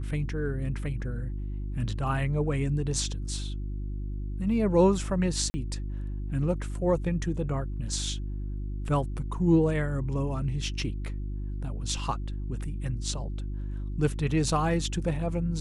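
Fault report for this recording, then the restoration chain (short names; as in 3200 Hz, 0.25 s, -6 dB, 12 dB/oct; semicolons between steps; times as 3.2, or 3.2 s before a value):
hum 50 Hz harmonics 7 -33 dBFS
5.5–5.54 gap 40 ms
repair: de-hum 50 Hz, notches 7; interpolate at 5.5, 40 ms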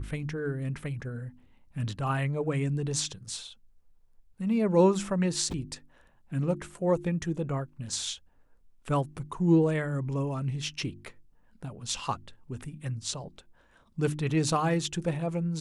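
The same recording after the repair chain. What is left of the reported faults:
none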